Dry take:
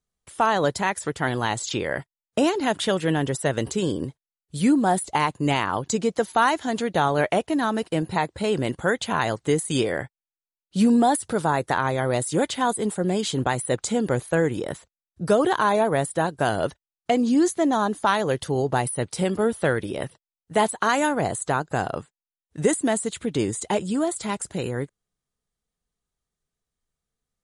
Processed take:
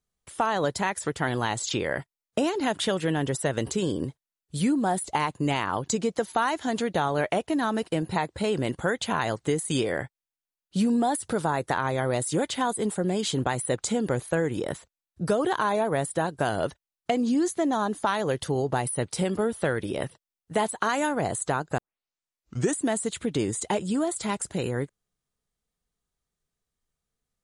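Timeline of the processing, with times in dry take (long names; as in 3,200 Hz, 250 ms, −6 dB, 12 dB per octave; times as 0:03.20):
0:21.78: tape start 0.99 s
whole clip: downward compressor 2.5 to 1, threshold −23 dBFS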